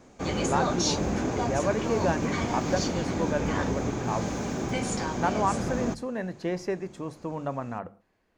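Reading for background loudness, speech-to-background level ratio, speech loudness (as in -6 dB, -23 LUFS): -29.5 LUFS, -2.5 dB, -32.0 LUFS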